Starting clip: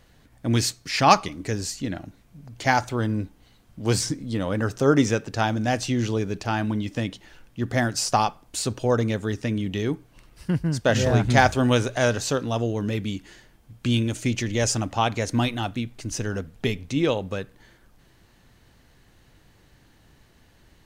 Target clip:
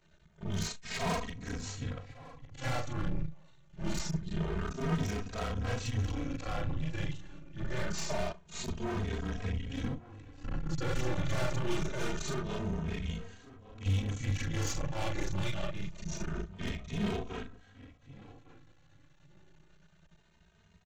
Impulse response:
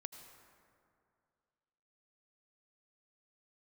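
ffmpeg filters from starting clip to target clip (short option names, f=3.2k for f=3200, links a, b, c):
-filter_complex "[0:a]afftfilt=real='re':imag='-im':win_size=4096:overlap=0.75,highpass=57,afreqshift=-140,aresample=16000,aeval=exprs='max(val(0),0)':c=same,aresample=44100,equalizer=f=100:t=o:w=0.33:g=5,equalizer=f=160:t=o:w=0.33:g=10,equalizer=f=5k:t=o:w=0.33:g=-7,aeval=exprs='clip(val(0),-1,0.0473)':c=same,asplit=2[a][b];[b]adelay=1156,lowpass=f=2k:p=1,volume=-17dB,asplit=2[c][d];[d]adelay=1156,lowpass=f=2k:p=1,volume=0.17[e];[c][e]amix=inputs=2:normalize=0[f];[a][f]amix=inputs=2:normalize=0,asplit=2[g][h];[h]adelay=2.9,afreqshift=0.25[i];[g][i]amix=inputs=2:normalize=1,volume=3dB"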